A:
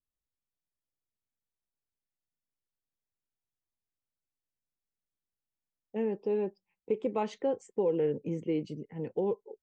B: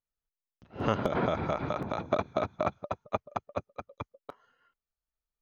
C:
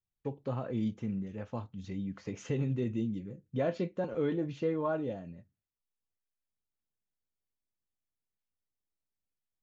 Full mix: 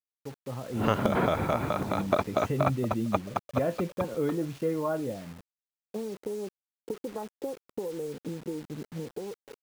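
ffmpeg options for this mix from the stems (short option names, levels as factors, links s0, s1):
-filter_complex "[0:a]afwtdn=0.0112,acompressor=threshold=0.0141:ratio=16,volume=0.841[s0];[1:a]highshelf=f=2100:g=7.5,volume=0.596[s1];[2:a]volume=0.596[s2];[s0][s1][s2]amix=inputs=3:normalize=0,equalizer=f=5200:w=0.56:g=-5.5,dynaudnorm=f=150:g=9:m=2.24,acrusher=bits=7:mix=0:aa=0.000001"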